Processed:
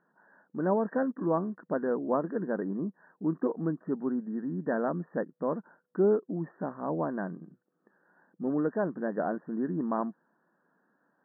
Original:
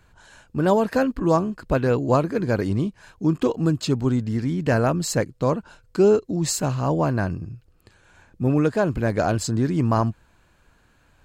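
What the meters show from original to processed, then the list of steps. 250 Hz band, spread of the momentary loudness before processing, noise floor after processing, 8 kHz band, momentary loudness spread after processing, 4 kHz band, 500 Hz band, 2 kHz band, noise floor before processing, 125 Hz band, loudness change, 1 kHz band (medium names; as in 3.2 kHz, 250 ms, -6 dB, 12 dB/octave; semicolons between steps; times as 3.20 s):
-8.0 dB, 6 LU, -75 dBFS, under -40 dB, 9 LU, under -40 dB, -8.0 dB, -11.0 dB, -60 dBFS, -16.5 dB, -9.0 dB, -9.0 dB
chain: brick-wall FIR band-pass 160–1900 Hz; distance through air 460 m; trim -7 dB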